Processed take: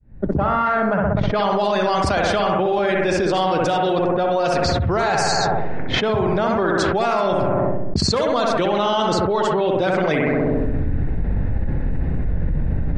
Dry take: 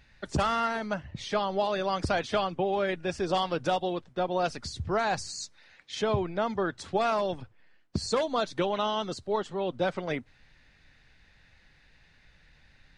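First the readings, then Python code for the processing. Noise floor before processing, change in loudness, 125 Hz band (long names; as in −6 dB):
−61 dBFS, +10.0 dB, +15.5 dB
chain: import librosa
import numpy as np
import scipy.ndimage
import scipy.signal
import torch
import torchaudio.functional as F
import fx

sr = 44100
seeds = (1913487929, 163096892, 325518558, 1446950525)

p1 = fx.fade_in_head(x, sr, length_s=1.87)
p2 = p1 + fx.echo_bbd(p1, sr, ms=64, stages=1024, feedback_pct=61, wet_db=-4.0, dry=0)
p3 = fx.env_lowpass(p2, sr, base_hz=340.0, full_db=-24.5)
p4 = fx.env_flatten(p3, sr, amount_pct=100)
y = p4 * 10.0 ** (3.0 / 20.0)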